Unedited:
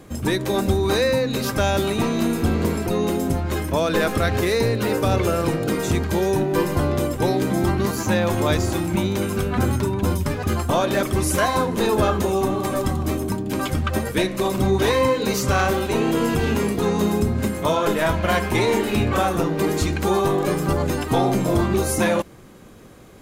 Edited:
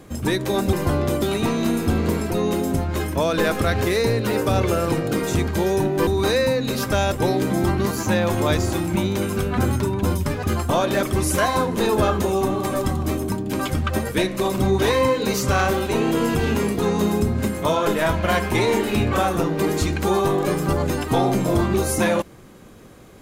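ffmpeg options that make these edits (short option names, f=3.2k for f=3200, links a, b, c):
-filter_complex "[0:a]asplit=5[a][b][c][d][e];[a]atrim=end=0.732[f];[b]atrim=start=6.628:end=7.122[g];[c]atrim=start=1.778:end=6.632[h];[d]atrim=start=0.728:end=1.782[i];[e]atrim=start=7.118[j];[f][g]acrossfade=d=0.004:c1=hsin:c2=hsin[k];[k][h]acrossfade=d=0.004:c1=hsin:c2=hsin[l];[l][i]acrossfade=d=0.004:c1=hsin:c2=hsin[m];[m][j]acrossfade=d=0.004:c1=hsin:c2=hsin"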